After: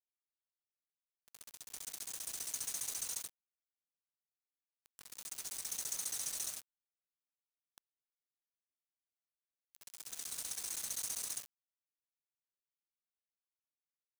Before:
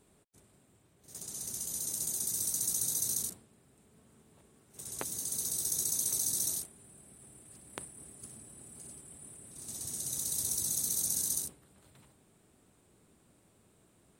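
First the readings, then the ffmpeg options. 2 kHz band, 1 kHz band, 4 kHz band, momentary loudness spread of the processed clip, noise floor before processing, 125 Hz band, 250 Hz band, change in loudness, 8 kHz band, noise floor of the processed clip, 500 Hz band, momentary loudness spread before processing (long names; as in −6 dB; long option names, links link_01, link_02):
+1.0 dB, −4.5 dB, −4.5 dB, 15 LU, −67 dBFS, −18.5 dB, −16.0 dB, −8.0 dB, −9.0 dB, below −85 dBFS, −11.0 dB, 19 LU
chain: -af "bandpass=frequency=4400:width_type=q:width=0.56:csg=0,afftfilt=real='hypot(re,im)*cos(2*PI*random(0))':imag='hypot(re,im)*sin(2*PI*random(1))':win_size=512:overlap=0.75,aeval=exprs='val(0)*gte(abs(val(0)),0.01)':channel_layout=same,volume=2.5dB"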